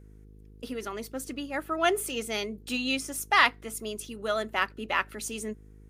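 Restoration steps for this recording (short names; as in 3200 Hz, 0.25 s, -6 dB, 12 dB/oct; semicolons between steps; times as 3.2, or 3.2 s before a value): de-hum 51.9 Hz, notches 9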